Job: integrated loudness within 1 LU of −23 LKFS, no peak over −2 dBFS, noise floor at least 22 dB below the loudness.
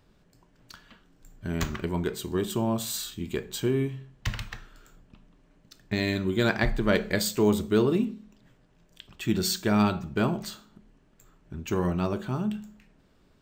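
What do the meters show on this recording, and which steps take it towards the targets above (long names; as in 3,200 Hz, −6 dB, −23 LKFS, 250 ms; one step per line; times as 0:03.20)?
number of dropouts 1; longest dropout 4.9 ms; integrated loudness −28.0 LKFS; sample peak −10.0 dBFS; target loudness −23.0 LKFS
→ repair the gap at 0:03.43, 4.9 ms
level +5 dB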